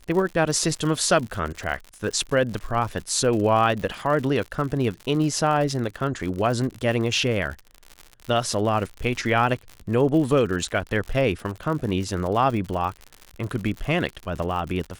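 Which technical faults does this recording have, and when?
crackle 92 per s -30 dBFS

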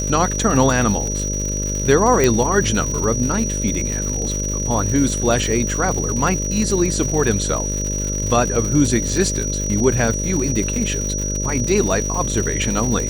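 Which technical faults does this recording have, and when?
buzz 50 Hz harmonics 12 -24 dBFS
crackle 190 per s -23 dBFS
whine 5.8 kHz -24 dBFS
2.24 s: pop

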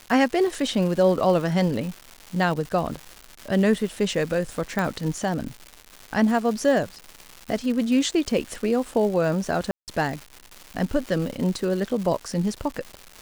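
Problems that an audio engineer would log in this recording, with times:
crackle 370 per s -31 dBFS
4.79 s: pop
9.71–9.88 s: dropout 168 ms

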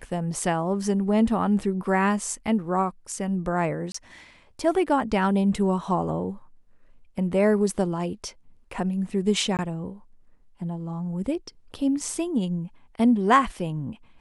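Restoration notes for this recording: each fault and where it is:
3.92–3.94 s: dropout 24 ms
9.57–9.59 s: dropout 18 ms

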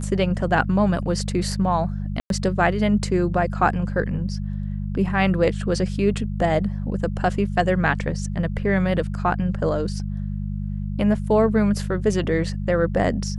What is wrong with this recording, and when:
hum 50 Hz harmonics 4 -27 dBFS
2.20–2.30 s: dropout 102 ms

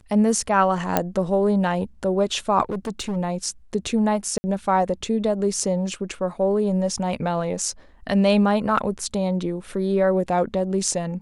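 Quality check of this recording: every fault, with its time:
0.97 s: pop -4 dBFS
2.70–3.17 s: clipped -22.5 dBFS
4.38–4.44 s: dropout 60 ms

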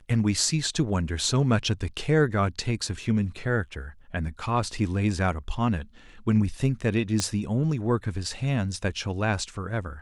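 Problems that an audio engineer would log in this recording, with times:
7.20 s: pop -11 dBFS

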